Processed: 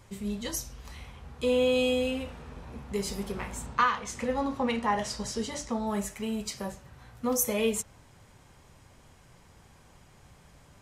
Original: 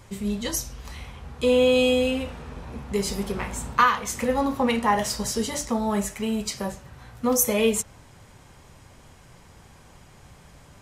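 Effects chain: 3.66–5.87 LPF 7600 Hz 12 dB/oct; gain -6 dB

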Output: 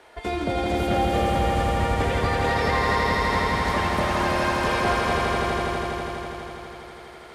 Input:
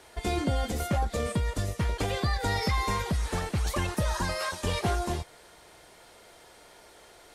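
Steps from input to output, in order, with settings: tone controls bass -9 dB, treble -13 dB; swelling echo 82 ms, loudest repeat 5, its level -3.5 dB; gain +4 dB

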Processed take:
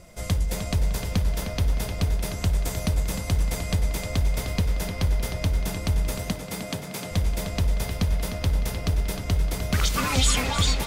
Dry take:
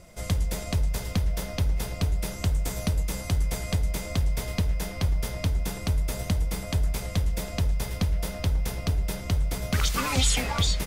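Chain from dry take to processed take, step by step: 6.18–7.11 HPF 140 Hz 24 dB/oct; on a send: tape echo 0.306 s, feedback 54%, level -6 dB, low-pass 5000 Hz; on the sum: gain +1.5 dB

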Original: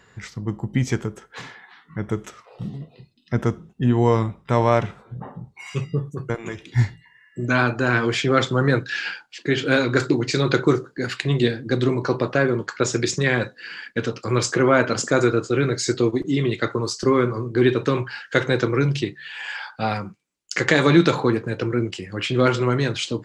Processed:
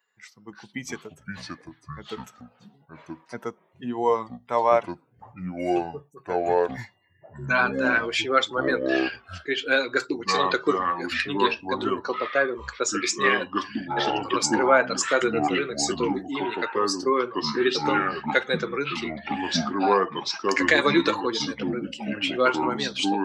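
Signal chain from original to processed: per-bin expansion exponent 1.5; HPF 480 Hz 12 dB/oct; echoes that change speed 0.267 s, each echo -5 st, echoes 2; gain +2.5 dB

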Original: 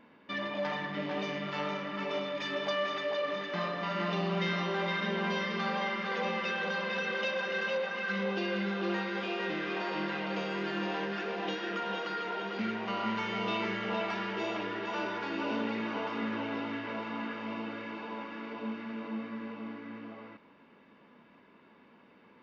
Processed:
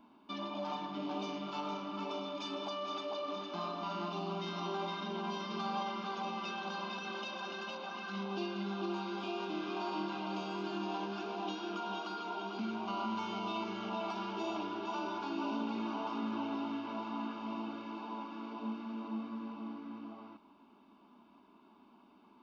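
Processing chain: limiter -25 dBFS, peak gain reduction 5 dB; fixed phaser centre 500 Hz, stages 6

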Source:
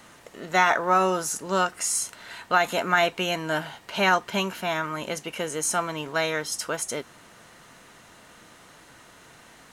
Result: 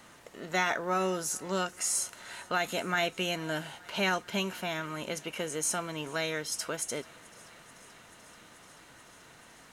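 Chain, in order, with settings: dynamic EQ 1000 Hz, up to -8 dB, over -35 dBFS, Q 0.96; thinning echo 0.435 s, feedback 83%, high-pass 440 Hz, level -24 dB; gain -4 dB

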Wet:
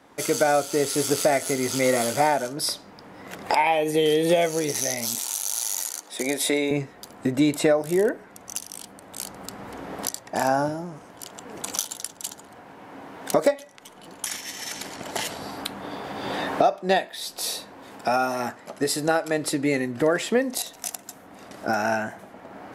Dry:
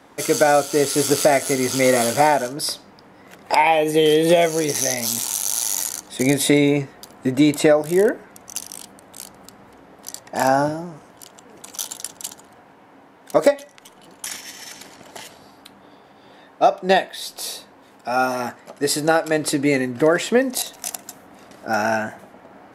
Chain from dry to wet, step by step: recorder AGC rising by 12 dB/s; 5.15–6.71 HPF 360 Hz 12 dB/oct; gain -5 dB

